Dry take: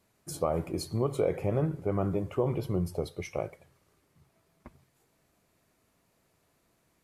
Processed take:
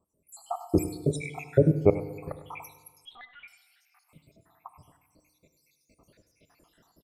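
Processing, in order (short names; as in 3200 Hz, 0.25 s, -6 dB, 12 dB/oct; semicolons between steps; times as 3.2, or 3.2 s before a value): random spectral dropouts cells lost 84%; FDN reverb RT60 1.4 s, low-frequency decay 1.05×, high-frequency decay 0.9×, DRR 11.5 dB; 3.05–3.48 LPC vocoder at 8 kHz pitch kept; tapped delay 79/100 ms -18.5/-15.5 dB; AGC gain up to 15.5 dB; gain -2.5 dB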